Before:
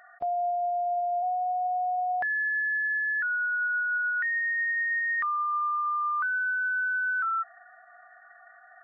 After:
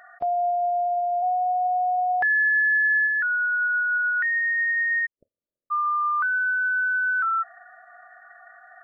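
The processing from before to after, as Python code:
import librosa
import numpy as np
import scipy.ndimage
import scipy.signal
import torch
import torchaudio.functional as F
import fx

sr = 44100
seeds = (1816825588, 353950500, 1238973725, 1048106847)

y = fx.comb(x, sr, ms=2.4, depth=0.48, at=(0.86, 3.06), fade=0.02)
y = fx.steep_lowpass(y, sr, hz=610.0, slope=96, at=(5.05, 5.7), fade=0.02)
y = y * librosa.db_to_amplitude(4.5)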